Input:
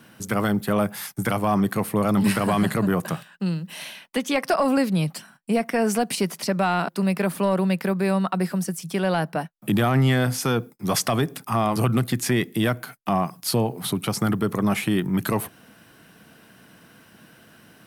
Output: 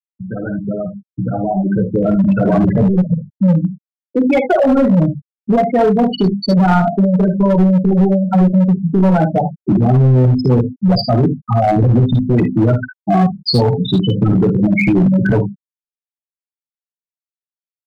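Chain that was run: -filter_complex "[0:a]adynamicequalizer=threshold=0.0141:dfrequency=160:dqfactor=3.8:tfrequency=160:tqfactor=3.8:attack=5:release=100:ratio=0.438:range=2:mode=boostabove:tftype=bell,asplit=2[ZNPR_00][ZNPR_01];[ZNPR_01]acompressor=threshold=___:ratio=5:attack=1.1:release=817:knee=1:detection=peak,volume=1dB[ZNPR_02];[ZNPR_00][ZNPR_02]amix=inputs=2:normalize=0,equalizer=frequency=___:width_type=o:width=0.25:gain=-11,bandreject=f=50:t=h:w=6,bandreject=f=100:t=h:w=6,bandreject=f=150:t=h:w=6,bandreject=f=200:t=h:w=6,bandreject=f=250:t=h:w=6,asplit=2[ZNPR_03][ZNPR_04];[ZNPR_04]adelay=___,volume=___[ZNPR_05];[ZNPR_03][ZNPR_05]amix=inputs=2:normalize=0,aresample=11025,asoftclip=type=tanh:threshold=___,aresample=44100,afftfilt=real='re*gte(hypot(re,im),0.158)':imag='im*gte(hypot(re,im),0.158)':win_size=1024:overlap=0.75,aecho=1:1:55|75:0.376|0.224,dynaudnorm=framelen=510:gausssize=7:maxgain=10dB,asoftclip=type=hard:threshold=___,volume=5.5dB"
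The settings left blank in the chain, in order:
-31dB, 1100, 16, -4.5dB, -23dB, -13dB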